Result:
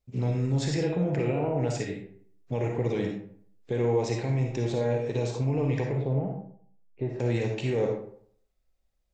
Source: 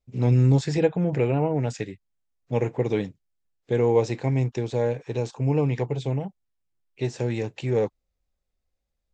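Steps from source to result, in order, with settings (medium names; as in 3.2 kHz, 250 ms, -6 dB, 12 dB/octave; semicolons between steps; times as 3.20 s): 5.95–7.20 s: Bessel low-pass 940 Hz, order 2; peak limiter -20.5 dBFS, peak gain reduction 11.5 dB; on a send: reverberation RT60 0.55 s, pre-delay 15 ms, DRR 1 dB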